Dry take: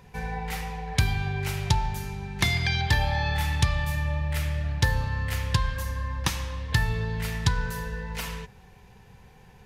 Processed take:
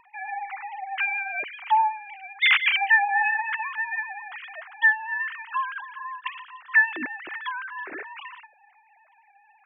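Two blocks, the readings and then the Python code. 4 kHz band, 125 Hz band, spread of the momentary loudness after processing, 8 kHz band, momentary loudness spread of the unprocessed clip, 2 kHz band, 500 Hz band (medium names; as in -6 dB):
0.0 dB, under -40 dB, 18 LU, under -40 dB, 9 LU, +9.5 dB, under -10 dB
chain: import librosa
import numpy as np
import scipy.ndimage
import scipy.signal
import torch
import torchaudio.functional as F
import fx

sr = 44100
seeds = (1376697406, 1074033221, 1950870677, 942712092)

y = fx.sine_speech(x, sr)
y = fx.vibrato(y, sr, rate_hz=7.9, depth_cents=30.0)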